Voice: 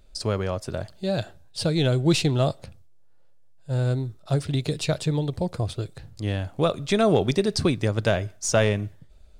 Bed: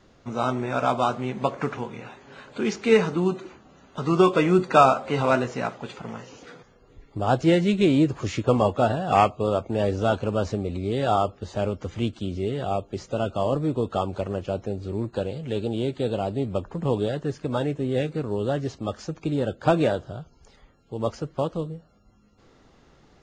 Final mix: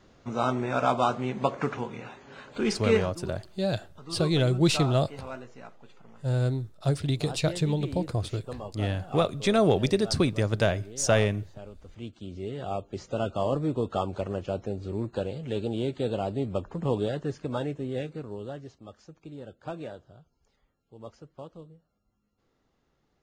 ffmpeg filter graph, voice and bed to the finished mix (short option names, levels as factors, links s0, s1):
-filter_complex "[0:a]adelay=2550,volume=0.794[s0];[1:a]volume=5.01,afade=t=out:st=2.78:d=0.35:silence=0.141254,afade=t=in:st=11.82:d=1.37:silence=0.16788,afade=t=out:st=17.17:d=1.6:silence=0.199526[s1];[s0][s1]amix=inputs=2:normalize=0"